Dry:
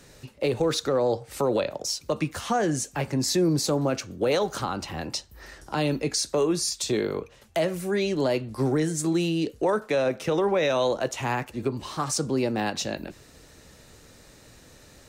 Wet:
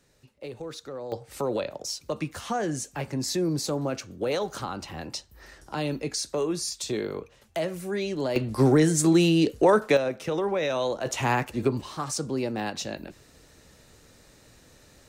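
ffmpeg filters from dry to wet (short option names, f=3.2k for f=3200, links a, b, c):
-af "asetnsamples=n=441:p=0,asendcmd='1.12 volume volume -4dB;8.36 volume volume 5dB;9.97 volume volume -3.5dB;11.06 volume volume 3dB;11.81 volume volume -3.5dB',volume=-13.5dB"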